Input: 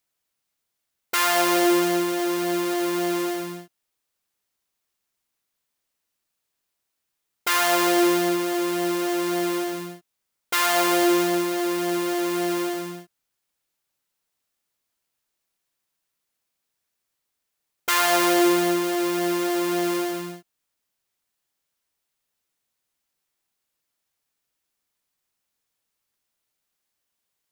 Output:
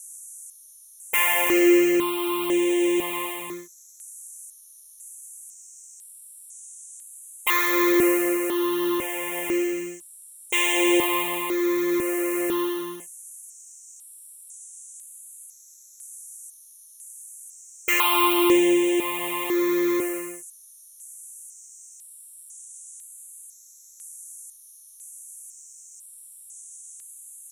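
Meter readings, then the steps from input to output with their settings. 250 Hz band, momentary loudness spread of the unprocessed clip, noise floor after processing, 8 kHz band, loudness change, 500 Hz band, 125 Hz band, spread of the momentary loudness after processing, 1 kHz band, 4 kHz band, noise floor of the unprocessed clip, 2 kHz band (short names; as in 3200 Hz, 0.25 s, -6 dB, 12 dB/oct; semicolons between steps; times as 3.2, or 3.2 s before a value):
+1.0 dB, 12 LU, -50 dBFS, 0.0 dB, +0.5 dB, 0.0 dB, -9.0 dB, 23 LU, -3.0 dB, -2.0 dB, -80 dBFS, +1.0 dB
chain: band noise 5700–11000 Hz -43 dBFS; fixed phaser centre 1000 Hz, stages 8; step phaser 2 Hz 940–4500 Hz; gain +6 dB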